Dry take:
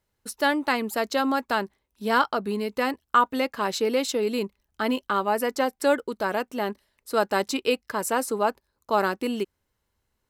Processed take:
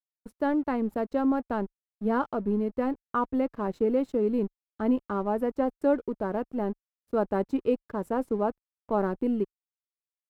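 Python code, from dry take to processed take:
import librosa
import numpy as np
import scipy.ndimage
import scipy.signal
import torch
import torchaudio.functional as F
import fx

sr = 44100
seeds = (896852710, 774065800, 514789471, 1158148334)

y = fx.peak_eq(x, sr, hz=5000.0, db=-14.5, octaves=2.8)
y = np.sign(y) * np.maximum(np.abs(y) - 10.0 ** (-48.0 / 20.0), 0.0)
y = fx.tilt_eq(y, sr, slope=-3.5)
y = y * librosa.db_to_amplitude(-4.0)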